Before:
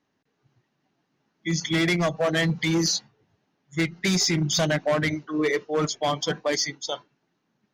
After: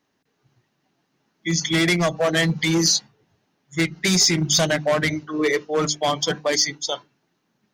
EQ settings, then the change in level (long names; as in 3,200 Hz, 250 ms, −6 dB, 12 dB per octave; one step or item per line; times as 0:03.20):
mains-hum notches 50/100/150/200/250/300 Hz
dynamic equaliser 8,600 Hz, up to +5 dB, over −52 dBFS, Q 5.3
high-shelf EQ 4,600 Hz +5.5 dB
+3.0 dB